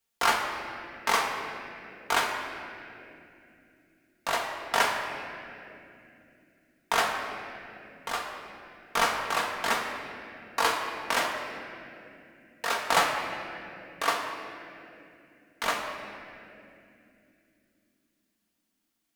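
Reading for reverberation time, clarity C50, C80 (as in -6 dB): 2.9 s, 3.5 dB, 4.5 dB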